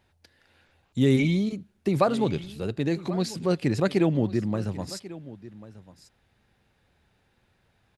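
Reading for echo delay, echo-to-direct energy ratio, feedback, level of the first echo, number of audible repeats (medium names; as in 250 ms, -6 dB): 1092 ms, -17.5 dB, no regular repeats, -17.5 dB, 1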